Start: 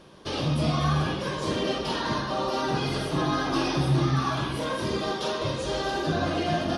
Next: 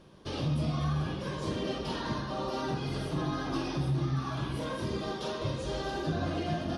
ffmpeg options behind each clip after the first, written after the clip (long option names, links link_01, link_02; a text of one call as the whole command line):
ffmpeg -i in.wav -af "lowshelf=frequency=260:gain=8,alimiter=limit=-14dB:level=0:latency=1:release=378,volume=-8dB" out.wav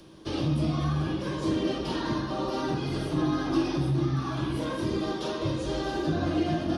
ffmpeg -i in.wav -filter_complex "[0:a]equalizer=frequency=320:width_type=o:width=0.2:gain=11.5,acrossover=split=120|460|2800[link_01][link_02][link_03][link_04];[link_04]acompressor=mode=upward:threshold=-60dB:ratio=2.5[link_05];[link_01][link_02][link_03][link_05]amix=inputs=4:normalize=0,volume=2.5dB" out.wav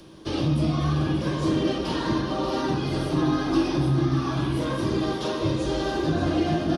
ffmpeg -i in.wav -af "aecho=1:1:584:0.335,volume=3.5dB" out.wav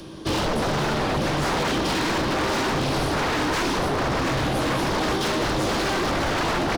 ffmpeg -i in.wav -af "aeval=exprs='0.0473*(abs(mod(val(0)/0.0473+3,4)-2)-1)':channel_layout=same,volume=8dB" out.wav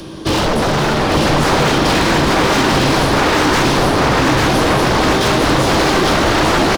ffmpeg -i in.wav -af "aecho=1:1:849:0.708,volume=8.5dB" out.wav